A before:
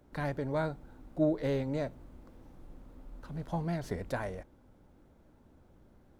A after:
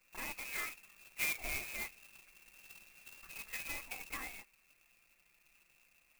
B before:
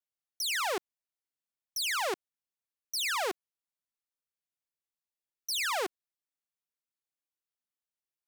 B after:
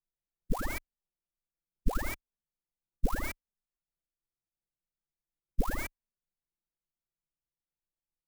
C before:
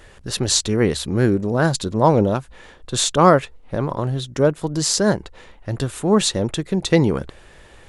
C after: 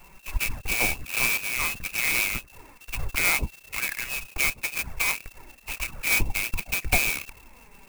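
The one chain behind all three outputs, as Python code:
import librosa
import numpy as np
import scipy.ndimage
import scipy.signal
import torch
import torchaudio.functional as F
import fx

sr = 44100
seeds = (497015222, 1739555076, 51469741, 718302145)

y = fx.dynamic_eq(x, sr, hz=400.0, q=2.4, threshold_db=-33.0, ratio=4.0, max_db=7)
y = fx.freq_invert(y, sr, carrier_hz=2700)
y = fx.env_flanger(y, sr, rest_ms=5.9, full_db=-14.0)
y = fx.tilt_eq(y, sr, slope=-4.0)
y = fx.clock_jitter(y, sr, seeds[0], jitter_ms=0.049)
y = F.gain(torch.from_numpy(y), -2.0).numpy()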